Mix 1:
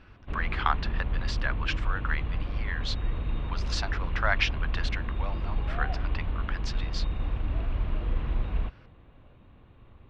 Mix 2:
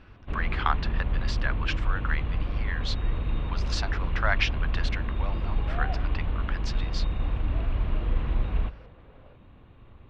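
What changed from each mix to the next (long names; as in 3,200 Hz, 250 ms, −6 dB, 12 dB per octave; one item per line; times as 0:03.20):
first sound: send on
second sound +11.0 dB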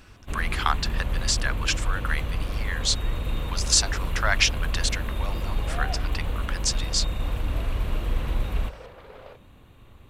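second sound +11.0 dB
master: remove high-frequency loss of the air 320 metres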